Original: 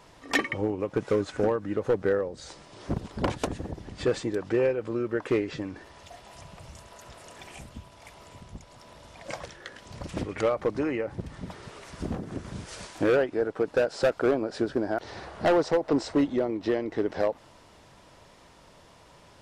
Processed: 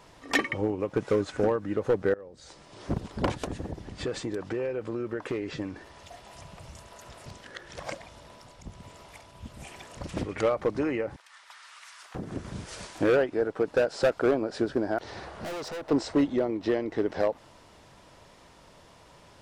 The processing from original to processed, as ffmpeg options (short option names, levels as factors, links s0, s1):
-filter_complex "[0:a]asettb=1/sr,asplit=3[s0][s1][s2];[s0]atrim=end=3.414[s3];[s1]atrim=start=3.41:end=5.53,asetpts=PTS-STARTPTS,afade=t=in:d=0.004:c=qsin,afade=t=out:st=2.116:d=0.004:c=qsin,acompressor=threshold=0.0447:ratio=6:attack=3.2:release=140:knee=1:detection=peak[s4];[s2]atrim=start=5.526[s5];[s3][s4]acrossfade=d=0.004:c1=hsin:c2=qsin[s6];[s6][s5]acrossfade=d=0.004:c1=qsin:c2=hsin,asettb=1/sr,asplit=3[s7][s8][s9];[s7]atrim=end=11.164[s10];[s8]atrim=start=11.16:end=12.15,asetpts=PTS-STARTPTS,afade=t=in:d=0.004:c=qsin,afade=t=out:st=0.986:d=0.004:c=qsin,highpass=f=1100:w=0.5412,highpass=f=1100:w=1.3066[s11];[s9]atrim=start=12.146[s12];[s10][s11]acrossfade=d=0.004:c1=hsin:c2=qsin[s13];[s13][s12]acrossfade=d=0.004:c1=qsin:c2=hsin,asettb=1/sr,asplit=3[s14][s15][s16];[s14]atrim=end=15.364[s17];[s15]atrim=start=15.36:end=15.91,asetpts=PTS-STARTPTS,afade=t=in:d=0.004:c=qsin,afade=t=out:st=0.546:d=0.004:c=qsin,asoftclip=type=hard:threshold=0.02[s18];[s16]atrim=start=15.906[s19];[s17][s18]acrossfade=d=0.004:c1=hsin:c2=qsin[s20];[s20][s19]acrossfade=d=0.004:c1=qsin:c2=hsin,asplit=4[s21][s22][s23][s24];[s21]atrim=end=2.14,asetpts=PTS-STARTPTS,afade=t=out:st=2.136:d=0.004:c=hsin:silence=0.0668344[s25];[s22]atrim=start=2.14:end=7.262,asetpts=PTS-STARTPTS,afade=t=in:d=0.66:silence=0.0668344[s26];[s23]atrim=start=7.258:end=9.972,asetpts=PTS-STARTPTS,areverse[s27];[s24]atrim=start=9.968[s28];[s25][s26]concat=n=2:v=0:a=1[s29];[s29][s27]acrossfade=d=0.004:c1=hsin:c2=hsin[s30];[s30][s28]acrossfade=d=0.004:c1=hsin:c2=hsin"